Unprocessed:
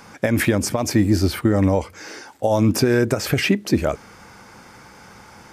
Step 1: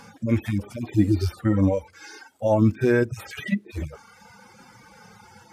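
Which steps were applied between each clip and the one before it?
median-filter separation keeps harmonic; reverb removal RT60 1 s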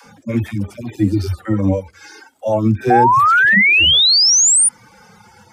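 painted sound rise, 2.89–4.69, 730–9700 Hz -15 dBFS; dispersion lows, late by 62 ms, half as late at 300 Hz; gain +3.5 dB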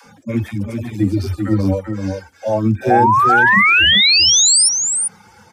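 echo 0.391 s -5.5 dB; gain -1 dB

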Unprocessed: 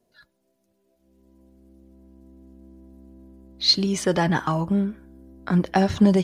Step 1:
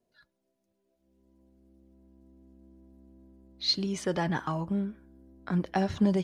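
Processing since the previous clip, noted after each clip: high shelf 8900 Hz -6.5 dB; gain -8 dB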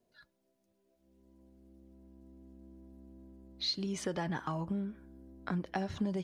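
compressor 3:1, threshold -36 dBFS, peak gain reduction 12 dB; gain +1.5 dB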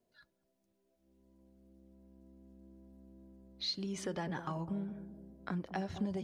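analogue delay 0.204 s, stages 1024, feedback 48%, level -10 dB; gain -3 dB

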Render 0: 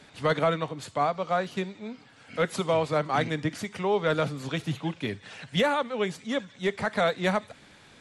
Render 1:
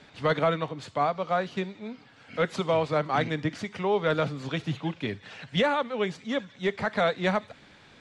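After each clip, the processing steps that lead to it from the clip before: LPF 5500 Hz 12 dB/oct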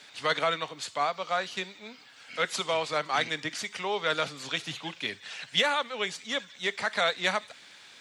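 tilt +4.5 dB/oct; gain -1.5 dB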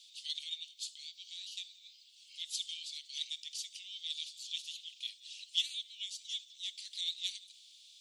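steep high-pass 3000 Hz 48 dB/oct; gain -4 dB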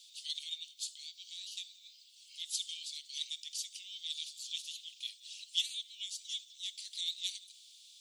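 high shelf 5900 Hz +10.5 dB; gain -3 dB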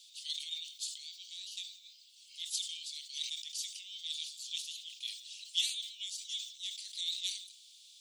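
sustainer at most 89 dB/s

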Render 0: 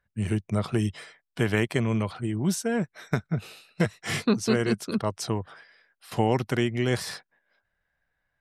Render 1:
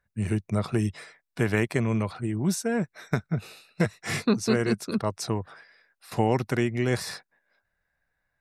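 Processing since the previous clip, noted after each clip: notch 3100 Hz, Q 6.2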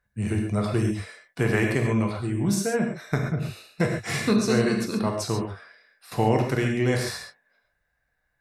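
non-linear reverb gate 0.16 s flat, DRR 1 dB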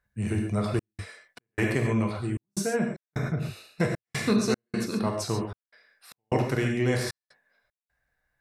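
step gate "xxxx.xx." 76 bpm -60 dB; gain -2 dB

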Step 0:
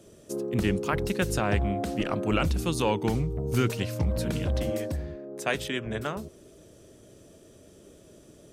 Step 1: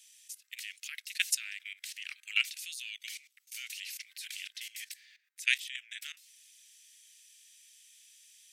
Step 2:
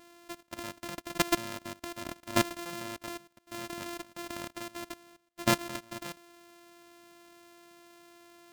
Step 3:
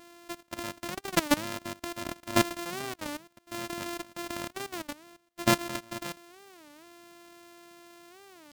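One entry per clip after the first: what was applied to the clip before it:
steep high-pass 2000 Hz 48 dB/oct; level quantiser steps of 17 dB; gain +8.5 dB
sample sorter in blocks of 128 samples; gain +3 dB
in parallel at -6.5 dB: hard clip -19 dBFS, distortion -9 dB; on the sum: record warp 33 1/3 rpm, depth 250 cents

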